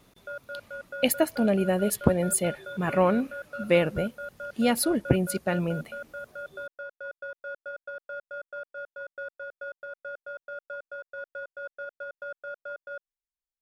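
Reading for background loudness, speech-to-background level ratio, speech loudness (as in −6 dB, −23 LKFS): −40.0 LKFS, 14.0 dB, −26.0 LKFS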